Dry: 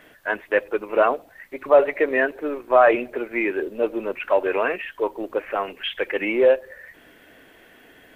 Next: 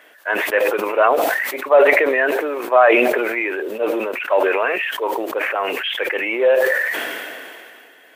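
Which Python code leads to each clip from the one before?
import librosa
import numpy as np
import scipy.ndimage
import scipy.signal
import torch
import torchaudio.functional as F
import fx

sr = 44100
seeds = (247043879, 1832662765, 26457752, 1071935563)

y = scipy.signal.sosfilt(scipy.signal.butter(2, 480.0, 'highpass', fs=sr, output='sos'), x)
y = fx.sustainer(y, sr, db_per_s=25.0)
y = y * 10.0 ** (3.0 / 20.0)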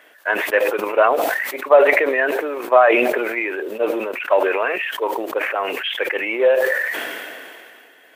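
y = fx.transient(x, sr, attack_db=4, sustain_db=-2)
y = y * 10.0 ** (-1.5 / 20.0)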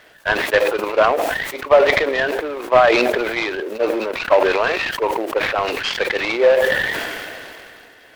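y = fx.rider(x, sr, range_db=3, speed_s=2.0)
y = fx.noise_mod_delay(y, sr, seeds[0], noise_hz=1300.0, depth_ms=0.035)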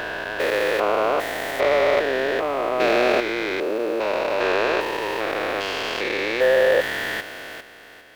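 y = fx.spec_steps(x, sr, hold_ms=400)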